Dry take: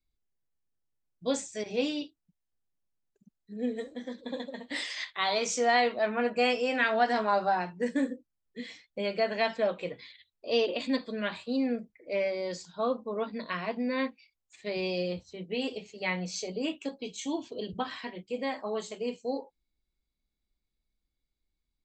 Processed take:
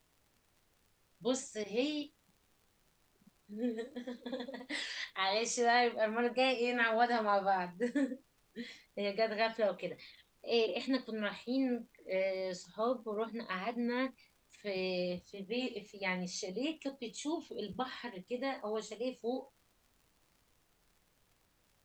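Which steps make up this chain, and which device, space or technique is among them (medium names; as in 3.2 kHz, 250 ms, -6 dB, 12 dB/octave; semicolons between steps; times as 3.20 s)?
warped LP (warped record 33 1/3 rpm, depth 100 cents; crackle; pink noise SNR 36 dB); trim -4.5 dB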